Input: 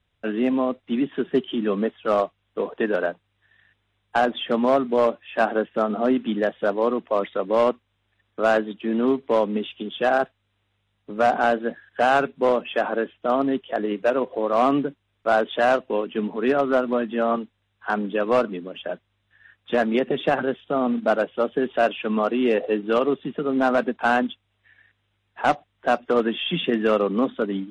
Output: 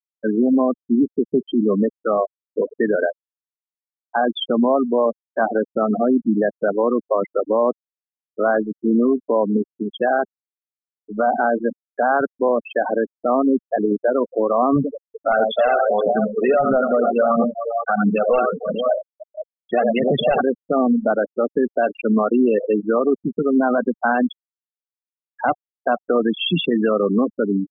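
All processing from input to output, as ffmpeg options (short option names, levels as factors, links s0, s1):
-filter_complex "[0:a]asettb=1/sr,asplit=3[s0][s1][s2];[s0]atrim=end=14.764[s3];[s1]atrim=start=14.76:end=20.41,asetpts=PTS-STARTPTS,afade=t=in:d=0.004:c=qsin,afade=t=out:st=5.646:d=0.004:c=qsin,aecho=1:1:1.5:0.52,atrim=end_sample=249165,aecho=1:1:83|300|484:0.422|0.178|0.335,atrim=end_sample=249165,aphaser=in_gain=1:out_gain=1:delay=2.9:decay=0.53:speed=1.5:type=triangular[s4];[s2]atrim=start=20.406[s5];[s3][s4]acrossfade=d=0.004:c1=hsin:c2=qsin[s6];[s6][s5]acrossfade=d=0.004:c1=qsin:c2=hsin,afftfilt=real='re*gte(hypot(re,im),0.141)':imag='im*gte(hypot(re,im),0.141)':win_size=1024:overlap=0.75,lowshelf=f=110:g=7,alimiter=level_in=5.01:limit=0.891:release=50:level=0:latency=1,volume=0.398"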